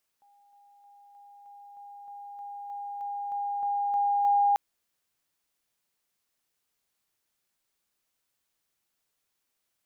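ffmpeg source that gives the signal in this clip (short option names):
-f lavfi -i "aevalsrc='pow(10,(-58.5+3*floor(t/0.31))/20)*sin(2*PI*811*t)':d=4.34:s=44100"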